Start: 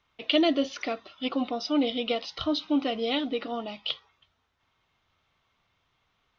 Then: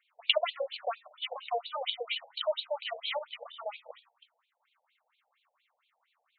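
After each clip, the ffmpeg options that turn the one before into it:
ffmpeg -i in.wav -af "afftfilt=real='re*between(b*sr/1024,610*pow(3300/610,0.5+0.5*sin(2*PI*4.3*pts/sr))/1.41,610*pow(3300/610,0.5+0.5*sin(2*PI*4.3*pts/sr))*1.41)':imag='im*between(b*sr/1024,610*pow(3300/610,0.5+0.5*sin(2*PI*4.3*pts/sr))/1.41,610*pow(3300/610,0.5+0.5*sin(2*PI*4.3*pts/sr))*1.41)':win_size=1024:overlap=0.75,volume=3dB" out.wav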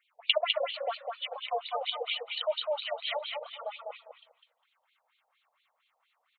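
ffmpeg -i in.wav -af "aecho=1:1:203|406|609:0.631|0.107|0.0182" out.wav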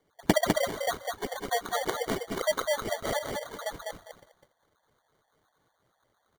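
ffmpeg -i in.wav -af "acrusher=samples=17:mix=1:aa=0.000001,volume=3dB" out.wav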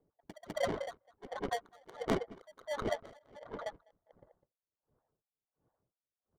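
ffmpeg -i in.wav -af "adynamicsmooth=sensitivity=3.5:basefreq=610,aeval=exprs='val(0)*pow(10,-31*(0.5-0.5*cos(2*PI*1.4*n/s))/20)':channel_layout=same,volume=1dB" out.wav

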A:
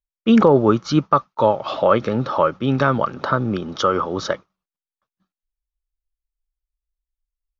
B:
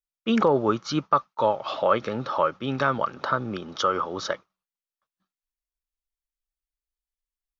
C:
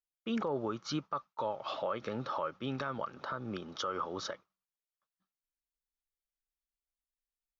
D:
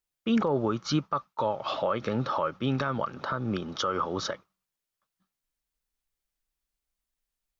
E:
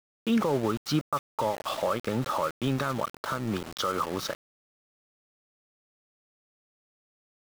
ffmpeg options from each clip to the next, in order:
ffmpeg -i in.wav -af "lowshelf=frequency=450:gain=-8.5,volume=-3dB" out.wav
ffmpeg -i in.wav -af "alimiter=limit=-17.5dB:level=0:latency=1:release=154,volume=-7.5dB" out.wav
ffmpeg -i in.wav -af "bass=frequency=250:gain=5,treble=frequency=4000:gain=0,volume=7dB" out.wav
ffmpeg -i in.wav -af "aeval=exprs='val(0)*gte(abs(val(0)),0.02)':channel_layout=same" out.wav

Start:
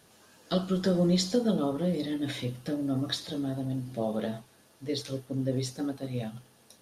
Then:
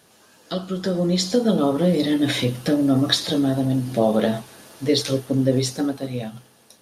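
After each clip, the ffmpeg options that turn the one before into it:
ffmpeg -i in.wav -filter_complex "[0:a]asplit=2[link_01][link_02];[link_02]acompressor=threshold=-37dB:ratio=6,volume=-3dB[link_03];[link_01][link_03]amix=inputs=2:normalize=0,lowshelf=frequency=110:gain=-7.5,dynaudnorm=framelen=260:gausssize=11:maxgain=12.5dB" out.wav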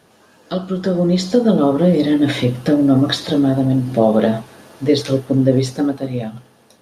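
ffmpeg -i in.wav -af "highshelf=frequency=3000:gain=-10.5,volume=5.5dB" out.wav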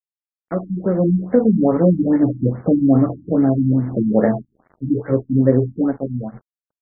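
ffmpeg -i in.wav -af "aeval=exprs='sgn(val(0))*max(abs(val(0))-0.0133,0)':channel_layout=same,afftfilt=real='re*lt(b*sr/1024,290*pow(2300/290,0.5+0.5*sin(2*PI*2.4*pts/sr)))':imag='im*lt(b*sr/1024,290*pow(2300/290,0.5+0.5*sin(2*PI*2.4*pts/sr)))':win_size=1024:overlap=0.75" out.wav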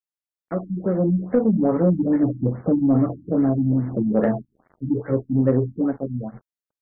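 ffmpeg -i in.wav -af "asoftclip=type=tanh:threshold=-4.5dB,volume=-3dB" out.wav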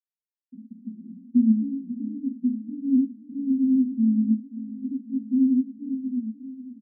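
ffmpeg -i in.wav -af "aresample=8000,acrusher=bits=4:mix=0:aa=0.000001,aresample=44100,asuperpass=centerf=240:order=8:qfactor=4.8,aecho=1:1:536|1072|1608|2144|2680|3216:0.178|0.103|0.0598|0.0347|0.0201|0.0117,volume=4dB" out.wav

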